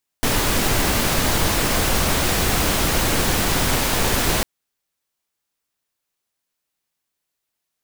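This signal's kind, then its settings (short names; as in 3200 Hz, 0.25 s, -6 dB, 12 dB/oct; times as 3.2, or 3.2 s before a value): noise pink, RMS -19 dBFS 4.20 s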